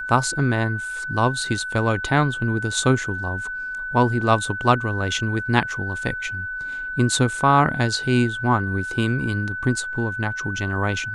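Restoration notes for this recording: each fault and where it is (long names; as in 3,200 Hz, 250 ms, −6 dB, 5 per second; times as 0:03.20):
whistle 1,500 Hz −27 dBFS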